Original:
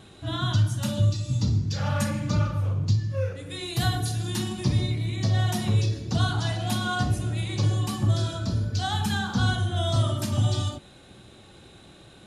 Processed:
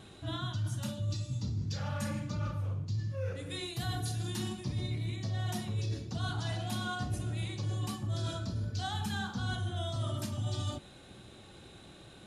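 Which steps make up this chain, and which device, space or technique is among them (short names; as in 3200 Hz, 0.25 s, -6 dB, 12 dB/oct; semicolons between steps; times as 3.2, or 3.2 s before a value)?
compression on the reversed sound (reverse; compressor, threshold -29 dBFS, peak gain reduction 11.5 dB; reverse); gain -3 dB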